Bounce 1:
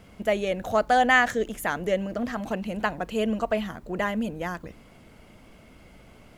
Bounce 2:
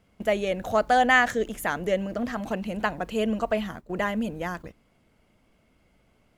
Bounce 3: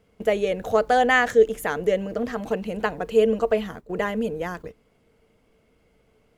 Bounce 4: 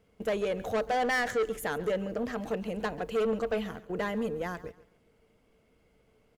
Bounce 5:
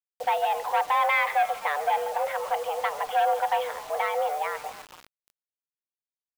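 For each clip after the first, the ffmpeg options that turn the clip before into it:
ffmpeg -i in.wav -af "agate=range=-13dB:threshold=-38dB:ratio=16:detection=peak" out.wav
ffmpeg -i in.wav -af "equalizer=frequency=450:width_type=o:width=0.21:gain=14" out.wav
ffmpeg -i in.wav -af "asoftclip=type=tanh:threshold=-20dB,aecho=1:1:138|276|414:0.126|0.0365|0.0106,volume=-4dB" out.wav
ffmpeg -i in.wav -filter_complex "[0:a]asplit=6[link_01][link_02][link_03][link_04][link_05][link_06];[link_02]adelay=261,afreqshift=140,volume=-19dB[link_07];[link_03]adelay=522,afreqshift=280,volume=-23.3dB[link_08];[link_04]adelay=783,afreqshift=420,volume=-27.6dB[link_09];[link_05]adelay=1044,afreqshift=560,volume=-31.9dB[link_10];[link_06]adelay=1305,afreqshift=700,volume=-36.2dB[link_11];[link_01][link_07][link_08][link_09][link_10][link_11]amix=inputs=6:normalize=0,highpass=frequency=160:width_type=q:width=0.5412,highpass=frequency=160:width_type=q:width=1.307,lowpass=frequency=3400:width_type=q:width=0.5176,lowpass=frequency=3400:width_type=q:width=0.7071,lowpass=frequency=3400:width_type=q:width=1.932,afreqshift=290,acrusher=bits=7:mix=0:aa=0.000001,volume=5dB" out.wav

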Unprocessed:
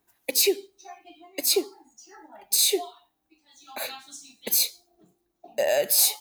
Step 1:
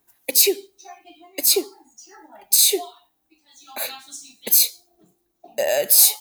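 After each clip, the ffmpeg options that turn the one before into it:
ffmpeg -i in.wav -af "highshelf=frequency=6500:gain=7,volume=2dB" out.wav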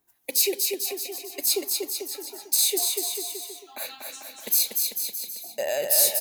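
ffmpeg -i in.wav -af "aecho=1:1:240|444|617.4|764.8|890.1:0.631|0.398|0.251|0.158|0.1,volume=-6.5dB" out.wav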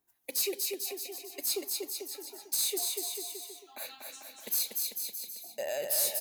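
ffmpeg -i in.wav -af "asoftclip=type=tanh:threshold=-14.5dB,volume=-7dB" out.wav

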